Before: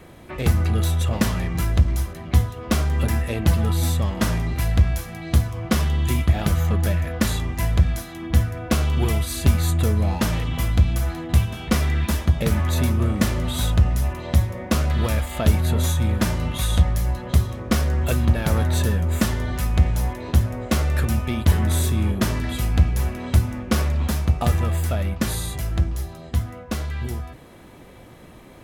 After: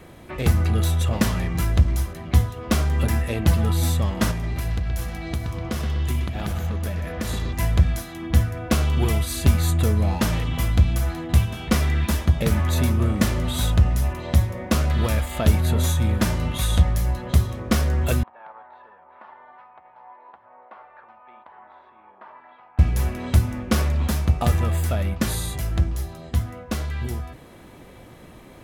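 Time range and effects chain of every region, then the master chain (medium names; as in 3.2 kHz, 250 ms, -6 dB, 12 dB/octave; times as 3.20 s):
4.31–7.53 s: compression 4:1, threshold -24 dBFS + bucket-brigade echo 124 ms, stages 4096, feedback 59%, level -7 dB
18.23–22.79 s: compression 3:1, threshold -19 dBFS + ladder band-pass 1 kHz, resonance 60% + distance through air 360 m
whole clip: none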